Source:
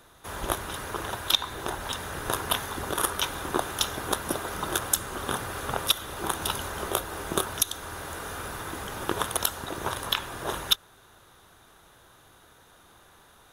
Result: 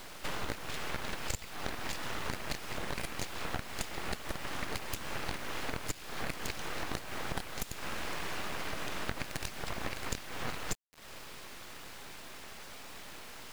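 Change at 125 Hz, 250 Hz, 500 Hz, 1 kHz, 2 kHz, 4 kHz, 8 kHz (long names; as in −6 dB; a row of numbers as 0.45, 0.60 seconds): −5.5, −6.5, −9.0, −9.5, −5.0, −12.5, −12.0 decibels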